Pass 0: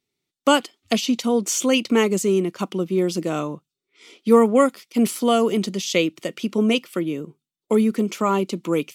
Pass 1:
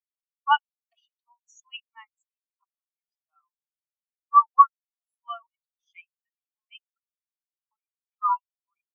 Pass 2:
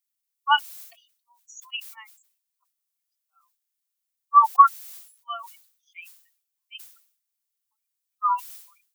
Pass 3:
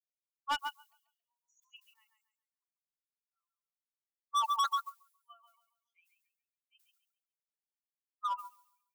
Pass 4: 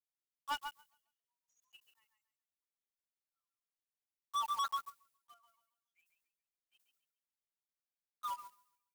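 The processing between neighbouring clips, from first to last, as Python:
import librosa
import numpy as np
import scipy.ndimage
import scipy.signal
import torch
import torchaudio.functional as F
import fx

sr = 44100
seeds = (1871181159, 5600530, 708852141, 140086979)

y1 = scipy.signal.sosfilt(scipy.signal.butter(6, 840.0, 'highpass', fs=sr, output='sos'), x)
y1 = fx.spectral_expand(y1, sr, expansion=4.0)
y1 = F.gain(torch.from_numpy(y1), 4.5).numpy()
y2 = fx.tilt_eq(y1, sr, slope=4.0)
y2 = fx.sustainer(y2, sr, db_per_s=96.0)
y3 = fx.echo_feedback(y2, sr, ms=138, feedback_pct=30, wet_db=-6.5)
y3 = np.clip(y3, -10.0 ** (-18.5 / 20.0), 10.0 ** (-18.5 / 20.0))
y3 = fx.upward_expand(y3, sr, threshold_db=-33.0, expansion=2.5)
y3 = F.gain(torch.from_numpy(y3), -7.5).numpy()
y4 = fx.block_float(y3, sr, bits=3)
y4 = fx.wow_flutter(y4, sr, seeds[0], rate_hz=2.1, depth_cents=15.0)
y4 = F.gain(torch.from_numpy(y4), -5.5).numpy()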